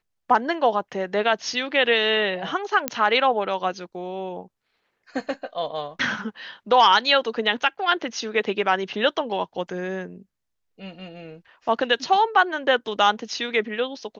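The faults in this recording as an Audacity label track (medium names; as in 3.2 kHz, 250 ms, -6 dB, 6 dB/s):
2.880000	2.880000	pop -5 dBFS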